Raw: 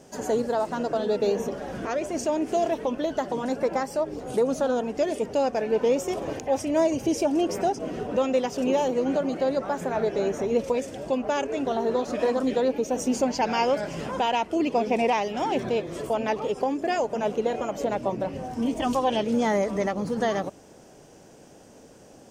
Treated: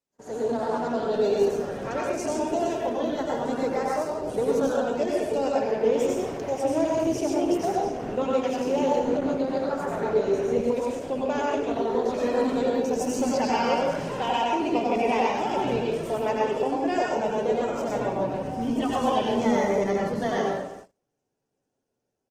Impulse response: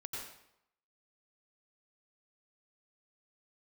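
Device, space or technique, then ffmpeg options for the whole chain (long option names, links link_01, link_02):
speakerphone in a meeting room: -filter_complex "[1:a]atrim=start_sample=2205[link_01];[0:a][link_01]afir=irnorm=-1:irlink=0,asplit=2[link_02][link_03];[link_03]adelay=250,highpass=300,lowpass=3400,asoftclip=type=hard:threshold=-21.5dB,volume=-17dB[link_04];[link_02][link_04]amix=inputs=2:normalize=0,dynaudnorm=framelen=190:gausssize=5:maxgain=8dB,agate=range=-31dB:threshold=-36dB:ratio=16:detection=peak,volume=-6.5dB" -ar 48000 -c:a libopus -b:a 16k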